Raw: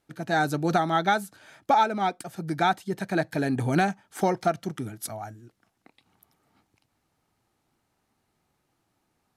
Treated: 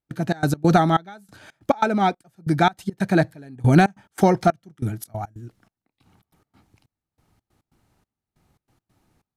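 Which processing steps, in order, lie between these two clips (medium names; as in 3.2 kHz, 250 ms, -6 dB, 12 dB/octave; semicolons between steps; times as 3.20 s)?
bass shelf 190 Hz +11 dB; trance gate ".xx.x.xxx.." 140 bpm -24 dB; trim +5 dB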